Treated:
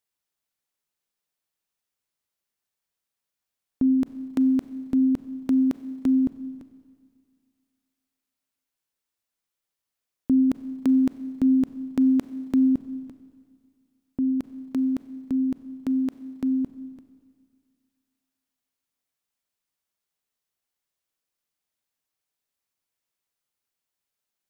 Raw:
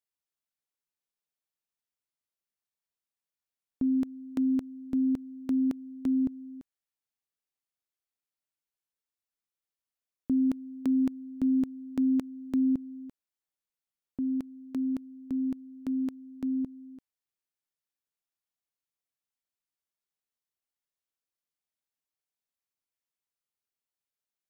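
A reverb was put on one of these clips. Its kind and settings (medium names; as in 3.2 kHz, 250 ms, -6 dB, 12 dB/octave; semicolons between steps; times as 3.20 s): Schroeder reverb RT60 2.1 s, combs from 30 ms, DRR 13 dB; trim +6.5 dB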